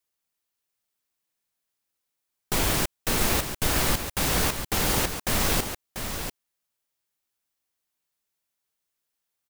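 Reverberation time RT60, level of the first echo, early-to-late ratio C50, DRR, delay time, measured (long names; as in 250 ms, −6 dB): no reverb audible, −8.0 dB, no reverb audible, no reverb audible, 691 ms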